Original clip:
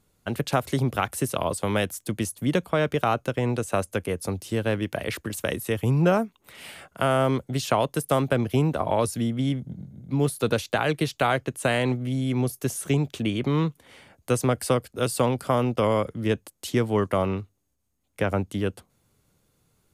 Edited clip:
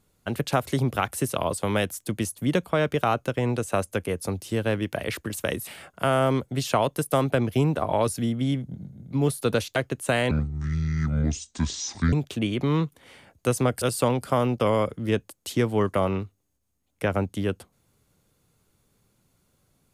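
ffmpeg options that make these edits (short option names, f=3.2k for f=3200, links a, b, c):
-filter_complex "[0:a]asplit=6[a][b][c][d][e][f];[a]atrim=end=5.672[g];[b]atrim=start=6.648:end=10.742[h];[c]atrim=start=11.318:end=11.874[i];[d]atrim=start=11.87:end=12.96,asetpts=PTS-STARTPTS,asetrate=26460,aresample=44100[j];[e]atrim=start=12.956:end=14.652[k];[f]atrim=start=14.988[l];[g][h]acrossfade=d=0.004:c1=hsin:c2=hsin[m];[m][i]acrossfade=d=0.004:c1=hsin:c2=hsin[n];[n][j]acrossfade=d=0.004:c1=hsin:c2=hsin[o];[o][k]acrossfade=d=0.004:c1=hsin:c2=hsin[p];[p][l]acrossfade=d=0.004:c1=hsin:c2=hsin"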